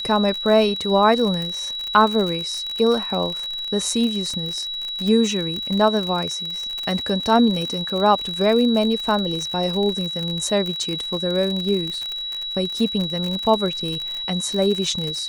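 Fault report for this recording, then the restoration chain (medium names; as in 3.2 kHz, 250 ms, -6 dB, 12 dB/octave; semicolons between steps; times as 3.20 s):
crackle 58 per s -24 dBFS
whine 3.9 kHz -26 dBFS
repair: de-click; band-stop 3.9 kHz, Q 30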